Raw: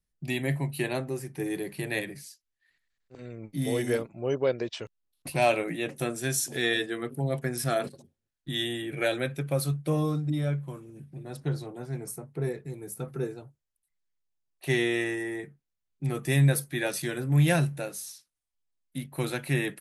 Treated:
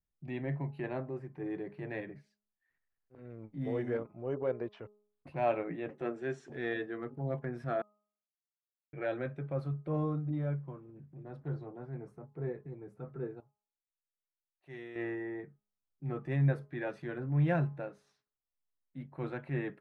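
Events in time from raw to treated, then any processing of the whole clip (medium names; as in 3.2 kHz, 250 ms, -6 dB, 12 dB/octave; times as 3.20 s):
5.90–6.50 s: cabinet simulation 180–9200 Hz, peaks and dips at 400 Hz +7 dB, 1.9 kHz +4 dB, 2.9 kHz +4 dB, 7.2 kHz +3 dB
7.82–8.93 s: mute
13.40–14.96 s: pre-emphasis filter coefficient 0.8
whole clip: Chebyshev low-pass 1.3 kHz, order 2; de-hum 208.5 Hz, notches 6; transient shaper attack -5 dB, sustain -1 dB; trim -4.5 dB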